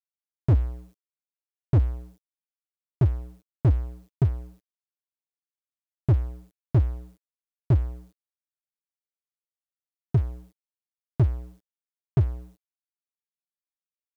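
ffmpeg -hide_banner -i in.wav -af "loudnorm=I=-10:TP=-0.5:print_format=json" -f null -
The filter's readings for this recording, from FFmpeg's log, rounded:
"input_i" : "-26.7",
"input_tp" : "-13.9",
"input_lra" : "5.3",
"input_thresh" : "-38.4",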